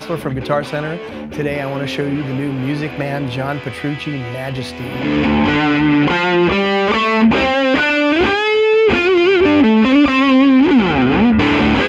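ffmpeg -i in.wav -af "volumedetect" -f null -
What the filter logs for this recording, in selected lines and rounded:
mean_volume: -14.4 dB
max_volume: -2.4 dB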